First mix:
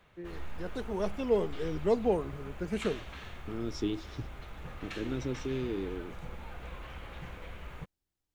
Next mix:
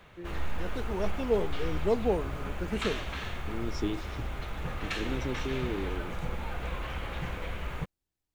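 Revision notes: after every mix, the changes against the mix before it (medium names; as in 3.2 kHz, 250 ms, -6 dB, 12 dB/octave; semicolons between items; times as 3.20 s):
background +8.5 dB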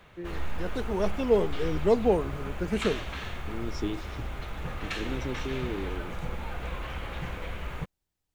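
first voice +4.5 dB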